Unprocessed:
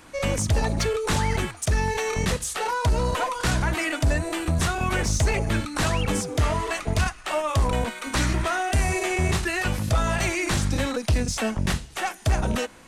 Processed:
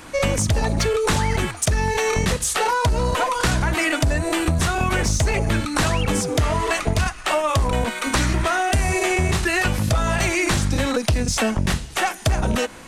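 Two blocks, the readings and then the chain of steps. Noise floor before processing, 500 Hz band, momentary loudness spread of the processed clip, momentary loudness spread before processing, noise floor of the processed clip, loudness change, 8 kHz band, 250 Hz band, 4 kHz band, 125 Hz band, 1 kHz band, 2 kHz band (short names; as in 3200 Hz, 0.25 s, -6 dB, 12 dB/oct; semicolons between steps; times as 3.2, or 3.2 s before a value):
-44 dBFS, +4.5 dB, 2 LU, 3 LU, -37 dBFS, +4.0 dB, +5.0 dB, +4.0 dB, +4.5 dB, +3.0 dB, +4.5 dB, +4.5 dB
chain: compressor, threshold -25 dBFS, peak gain reduction 8 dB; gain +8.5 dB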